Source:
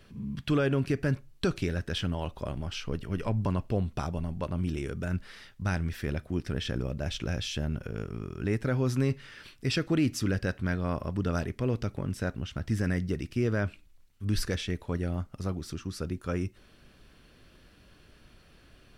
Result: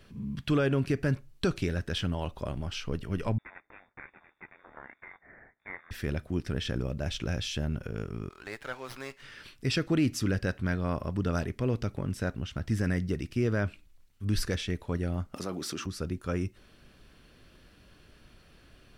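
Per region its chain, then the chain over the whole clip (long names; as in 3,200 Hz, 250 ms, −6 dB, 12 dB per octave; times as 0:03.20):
0:03.38–0:05.91: lower of the sound and its delayed copy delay 0.61 ms + inverse Chebyshev high-pass filter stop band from 650 Hz, stop band 50 dB + voice inversion scrambler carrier 3,600 Hz
0:08.29–0:09.22: high-pass filter 840 Hz + windowed peak hold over 5 samples
0:15.34–0:15.86: high-pass filter 260 Hz + envelope flattener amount 70%
whole clip: no processing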